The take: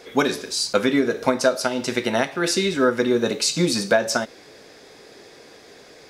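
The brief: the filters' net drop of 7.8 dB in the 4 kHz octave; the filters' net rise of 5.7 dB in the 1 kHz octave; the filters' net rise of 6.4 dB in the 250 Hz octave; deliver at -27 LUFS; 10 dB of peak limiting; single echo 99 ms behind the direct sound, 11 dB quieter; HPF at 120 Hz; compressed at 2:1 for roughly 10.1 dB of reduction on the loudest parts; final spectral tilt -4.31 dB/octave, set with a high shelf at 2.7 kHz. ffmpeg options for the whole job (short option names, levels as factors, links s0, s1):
-af "highpass=120,equalizer=f=250:t=o:g=7.5,equalizer=f=1000:t=o:g=8.5,highshelf=f=2700:g=-3.5,equalizer=f=4000:t=o:g=-7,acompressor=threshold=0.0398:ratio=2,alimiter=limit=0.112:level=0:latency=1,aecho=1:1:99:0.282,volume=1.26"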